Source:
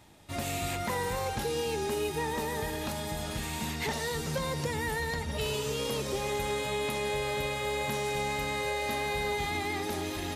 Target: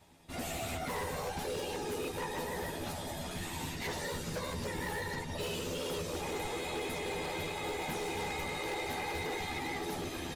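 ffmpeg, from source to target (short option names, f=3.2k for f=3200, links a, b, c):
-filter_complex "[0:a]afftfilt=real='hypot(re,im)*cos(2*PI*random(0))':imag='hypot(re,im)*sin(2*PI*random(1))':win_size=512:overlap=0.75,asplit=2[a][b];[b]adelay=12,volume=-4dB[c];[a][c]amix=inputs=2:normalize=0,aeval=exprs='0.0299*(abs(mod(val(0)/0.0299+3,4)-2)-1)':c=same"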